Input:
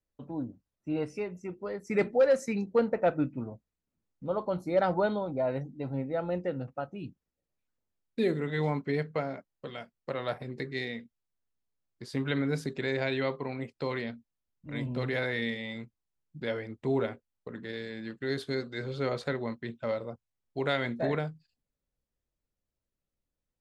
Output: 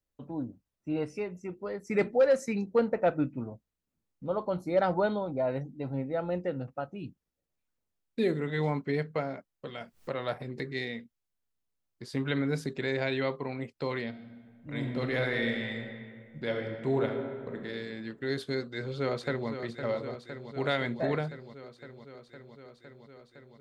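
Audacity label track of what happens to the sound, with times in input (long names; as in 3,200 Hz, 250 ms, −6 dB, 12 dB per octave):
9.810000	10.850000	upward compression, threshold −35 dBFS
14.080000	17.650000	thrown reverb, RT60 2 s, DRR 3.5 dB
18.570000	19.490000	delay throw 510 ms, feedback 80%, level −9 dB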